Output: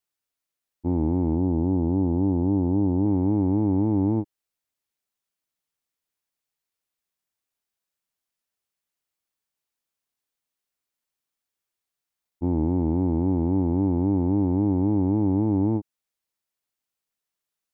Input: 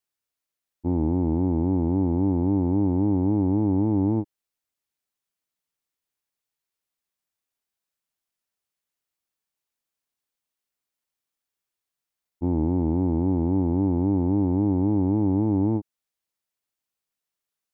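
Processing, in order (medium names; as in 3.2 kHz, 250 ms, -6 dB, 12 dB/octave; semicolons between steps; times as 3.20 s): 1.35–3.06 s: low-pass 1.1 kHz 12 dB/octave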